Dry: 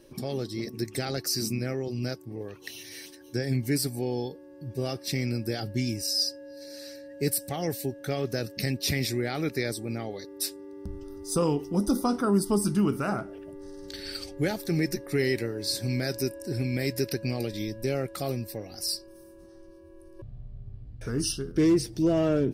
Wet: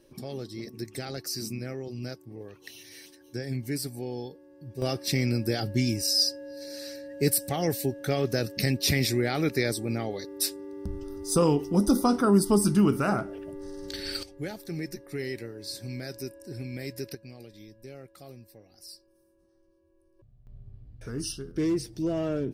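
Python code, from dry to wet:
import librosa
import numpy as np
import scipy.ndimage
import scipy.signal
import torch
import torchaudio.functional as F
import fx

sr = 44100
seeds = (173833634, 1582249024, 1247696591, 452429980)

y = fx.gain(x, sr, db=fx.steps((0.0, -5.0), (4.82, 3.0), (14.23, -8.0), (17.15, -16.0), (20.47, -5.0)))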